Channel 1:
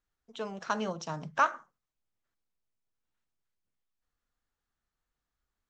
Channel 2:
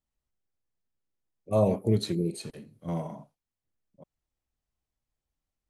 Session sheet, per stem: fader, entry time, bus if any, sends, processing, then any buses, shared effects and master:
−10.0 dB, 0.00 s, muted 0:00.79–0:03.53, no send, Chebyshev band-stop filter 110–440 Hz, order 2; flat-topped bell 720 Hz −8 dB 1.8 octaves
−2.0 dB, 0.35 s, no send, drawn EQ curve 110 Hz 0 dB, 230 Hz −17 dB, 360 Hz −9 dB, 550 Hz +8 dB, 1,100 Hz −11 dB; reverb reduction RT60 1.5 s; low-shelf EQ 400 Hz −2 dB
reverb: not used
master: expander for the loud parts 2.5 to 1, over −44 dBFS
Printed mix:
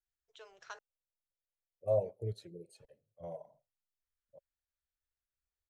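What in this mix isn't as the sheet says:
stem 2 −2.0 dB → −9.0 dB
master: missing expander for the loud parts 2.5 to 1, over −44 dBFS

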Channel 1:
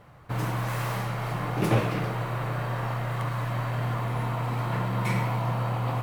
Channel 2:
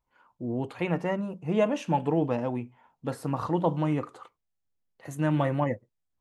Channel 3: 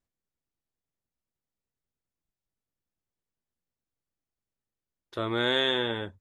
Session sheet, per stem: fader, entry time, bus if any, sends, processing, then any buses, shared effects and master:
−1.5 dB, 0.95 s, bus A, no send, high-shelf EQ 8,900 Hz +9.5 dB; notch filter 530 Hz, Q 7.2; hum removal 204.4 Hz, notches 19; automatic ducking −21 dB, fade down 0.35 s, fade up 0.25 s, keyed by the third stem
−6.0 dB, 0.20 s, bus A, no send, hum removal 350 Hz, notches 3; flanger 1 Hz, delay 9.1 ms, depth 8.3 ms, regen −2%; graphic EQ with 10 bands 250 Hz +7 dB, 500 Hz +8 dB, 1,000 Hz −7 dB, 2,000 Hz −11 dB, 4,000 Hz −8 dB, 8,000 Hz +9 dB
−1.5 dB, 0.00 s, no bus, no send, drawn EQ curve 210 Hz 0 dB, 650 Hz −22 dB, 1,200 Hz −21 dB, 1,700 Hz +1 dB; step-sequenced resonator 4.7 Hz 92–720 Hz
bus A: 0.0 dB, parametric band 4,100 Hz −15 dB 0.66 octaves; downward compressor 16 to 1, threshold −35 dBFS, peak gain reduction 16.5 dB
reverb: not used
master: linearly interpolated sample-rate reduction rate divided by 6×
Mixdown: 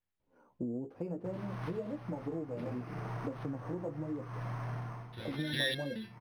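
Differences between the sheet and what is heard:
stem 2 −6.0 dB → +4.0 dB
stem 3 −1.5 dB → +5.5 dB

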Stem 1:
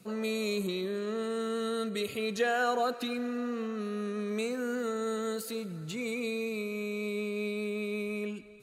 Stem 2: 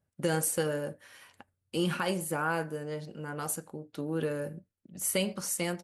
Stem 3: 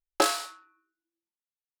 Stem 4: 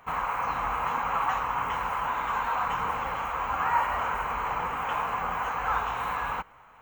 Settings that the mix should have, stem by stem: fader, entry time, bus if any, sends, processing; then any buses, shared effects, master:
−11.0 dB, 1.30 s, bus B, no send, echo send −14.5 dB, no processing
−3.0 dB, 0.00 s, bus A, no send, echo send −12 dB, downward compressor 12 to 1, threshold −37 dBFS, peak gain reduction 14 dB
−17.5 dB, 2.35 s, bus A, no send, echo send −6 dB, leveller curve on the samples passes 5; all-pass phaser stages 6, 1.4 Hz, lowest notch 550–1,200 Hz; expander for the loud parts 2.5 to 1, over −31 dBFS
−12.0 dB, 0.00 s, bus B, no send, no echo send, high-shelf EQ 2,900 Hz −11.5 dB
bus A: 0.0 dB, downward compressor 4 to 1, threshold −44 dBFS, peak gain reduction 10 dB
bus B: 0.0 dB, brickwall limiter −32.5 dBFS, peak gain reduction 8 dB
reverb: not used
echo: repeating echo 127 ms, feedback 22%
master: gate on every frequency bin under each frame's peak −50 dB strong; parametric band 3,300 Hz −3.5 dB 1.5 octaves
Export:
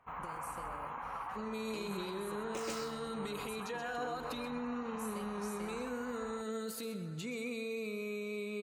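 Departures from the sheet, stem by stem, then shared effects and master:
stem 1 −11.0 dB → −2.5 dB
stem 2 −3.0 dB → −10.0 dB
master: missing parametric band 3,300 Hz −3.5 dB 1.5 octaves

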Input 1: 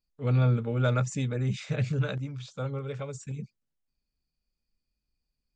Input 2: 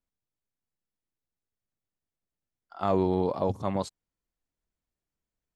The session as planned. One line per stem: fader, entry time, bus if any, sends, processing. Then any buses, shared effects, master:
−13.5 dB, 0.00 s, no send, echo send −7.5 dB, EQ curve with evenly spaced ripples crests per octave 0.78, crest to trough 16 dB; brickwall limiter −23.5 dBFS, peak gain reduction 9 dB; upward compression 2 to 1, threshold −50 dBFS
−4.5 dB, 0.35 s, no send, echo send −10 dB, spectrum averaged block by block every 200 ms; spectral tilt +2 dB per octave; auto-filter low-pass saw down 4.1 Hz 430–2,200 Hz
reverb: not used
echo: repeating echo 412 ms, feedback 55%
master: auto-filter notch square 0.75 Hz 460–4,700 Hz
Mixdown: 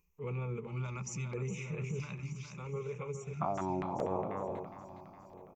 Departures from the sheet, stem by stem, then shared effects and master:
stem 1 −13.5 dB → −7.5 dB
stem 2: entry 0.35 s → 0.65 s

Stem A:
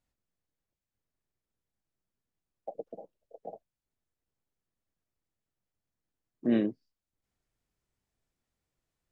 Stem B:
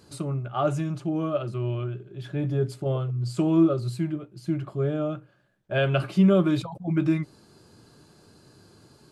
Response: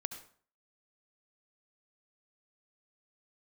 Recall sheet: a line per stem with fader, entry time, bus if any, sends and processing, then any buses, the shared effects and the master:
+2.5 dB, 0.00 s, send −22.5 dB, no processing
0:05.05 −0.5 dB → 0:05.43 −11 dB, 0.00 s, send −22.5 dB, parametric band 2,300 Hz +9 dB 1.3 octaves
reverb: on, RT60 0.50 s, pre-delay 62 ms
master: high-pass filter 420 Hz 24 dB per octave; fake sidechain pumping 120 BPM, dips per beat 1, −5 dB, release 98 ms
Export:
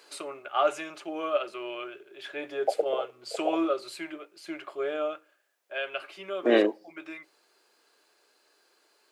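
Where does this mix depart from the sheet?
stem A +2.5 dB → +14.0 dB
master: missing fake sidechain pumping 120 BPM, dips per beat 1, −5 dB, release 98 ms

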